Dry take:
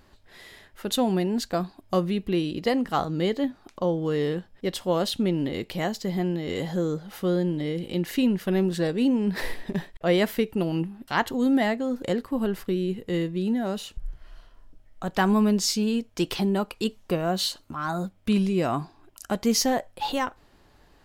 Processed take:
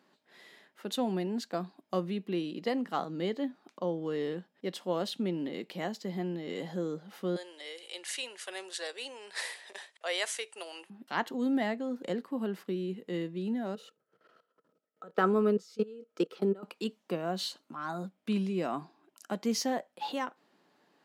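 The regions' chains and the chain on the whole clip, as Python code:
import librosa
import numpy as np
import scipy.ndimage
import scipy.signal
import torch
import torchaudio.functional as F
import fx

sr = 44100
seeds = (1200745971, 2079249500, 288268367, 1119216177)

y = fx.chain(x, sr, fx.highpass(hz=470.0, slope=24),
    fx.tilt_eq(slope=4.0),
    fx.resample_bad(factor=2, down='none', up='filtered'), at=(7.36, 10.9))
y = fx.chain(y, sr, fx.level_steps(step_db=23),
    fx.small_body(hz=(470.0, 1300.0), ring_ms=35, db=18), at=(13.75, 16.63))
y = scipy.signal.sosfilt(scipy.signal.butter(6, 170.0, 'highpass', fs=sr, output='sos'), y)
y = fx.high_shelf(y, sr, hz=8200.0, db=-8.0)
y = y * 10.0 ** (-7.5 / 20.0)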